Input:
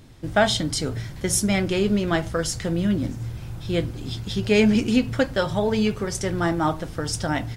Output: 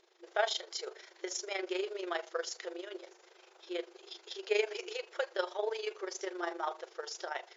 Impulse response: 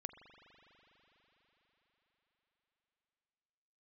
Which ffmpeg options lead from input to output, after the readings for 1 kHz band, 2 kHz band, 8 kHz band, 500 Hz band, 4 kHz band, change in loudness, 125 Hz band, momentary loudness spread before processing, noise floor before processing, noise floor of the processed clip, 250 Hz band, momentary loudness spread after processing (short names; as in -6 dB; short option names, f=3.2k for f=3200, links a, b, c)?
-11.0 dB, -11.5 dB, -15.5 dB, -11.5 dB, -11.5 dB, -14.0 dB, under -40 dB, 10 LU, -37 dBFS, -62 dBFS, -25.0 dB, 13 LU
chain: -af "tremolo=f=25:d=0.71,afftfilt=real='re*between(b*sr/4096,340,7300)':imag='im*between(b*sr/4096,340,7300)':win_size=4096:overlap=0.75,volume=-8dB"